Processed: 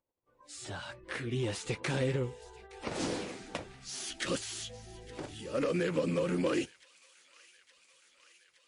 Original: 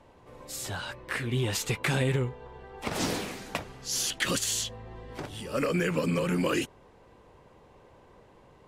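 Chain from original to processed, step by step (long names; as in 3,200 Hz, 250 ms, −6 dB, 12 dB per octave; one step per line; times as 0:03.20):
phase distortion by the signal itself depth 0.1 ms
noise gate −51 dBFS, range −37 dB
hollow resonant body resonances 330/510 Hz, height 6 dB, ringing for 25 ms
upward compression, threshold −45 dBFS
noise reduction from a noise print of the clip's start 20 dB
on a send: delay with a high-pass on its return 867 ms, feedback 73%, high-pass 2,000 Hz, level −18 dB
on the sum: level −6 dB
MP3 40 kbit/s 24,000 Hz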